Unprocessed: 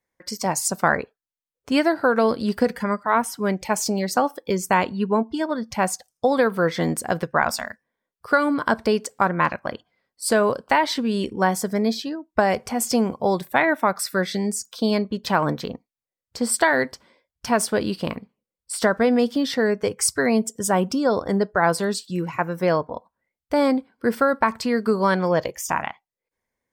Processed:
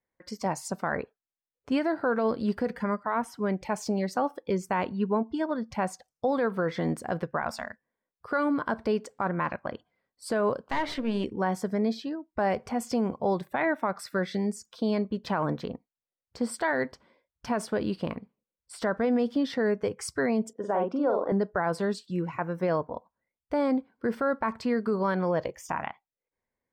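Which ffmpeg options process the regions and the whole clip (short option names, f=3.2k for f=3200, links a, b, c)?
-filter_complex "[0:a]asettb=1/sr,asplit=3[a][b][c];[a]atrim=end=10.714[d];[b]atrim=start=10.71:end=11.24,asetpts=PTS-STARTPTS,afade=t=in:d=0.004:c=qsin,afade=t=out:st=0.526:d=0.004:c=qsin,equalizer=f=2.3k:t=o:w=0.82:g=6.5,aeval=exprs='clip(val(0),-1,0.0398)':c=same,bandreject=f=60:t=h:w=6,bandreject=f=120:t=h:w=6,bandreject=f=180:t=h:w=6,bandreject=f=240:t=h:w=6,bandreject=f=300:t=h:w=6,bandreject=f=360:t=h:w=6,bandreject=f=420:t=h:w=6,bandreject=f=480:t=h:w=6,bandreject=f=540:t=h:w=6,bandreject=f=600:t=h:w=6[e];[c]atrim=start=11.236[f];[d][e]acrossfade=d=0.004:c1=hsin:c2=qsin[g];[g][f]acrossfade=d=0.004:c1=qsin:c2=hsin,asettb=1/sr,asplit=3[h][i][j];[h]atrim=end=20.534[k];[i]atrim=start=20.53:end=21.32,asetpts=PTS-STARTPTS,afade=t=in:d=0.004:c=qsin,afade=t=out:st=0.786:d=0.004:c=qsin,highpass=460,lowpass=3.3k,tiltshelf=f=1.4k:g=7.5,asplit=2[l][m];[m]adelay=45,volume=-5dB[n];[l][n]amix=inputs=2:normalize=0,atrim=end_sample=34839[o];[j]atrim=start=21.316[p];[k][o]acrossfade=d=0.004:c1=hsin:c2=qsin[q];[q][p]acrossfade=d=0.004:c1=qsin:c2=hsin,lowpass=f=1.9k:p=1,alimiter=limit=-13.5dB:level=0:latency=1:release=33,volume=-4dB"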